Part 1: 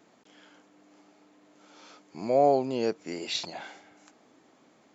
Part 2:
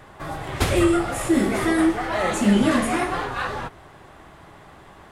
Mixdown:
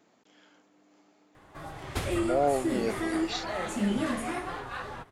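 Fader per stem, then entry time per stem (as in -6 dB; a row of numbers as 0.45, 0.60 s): -4.0, -10.5 dB; 0.00, 1.35 s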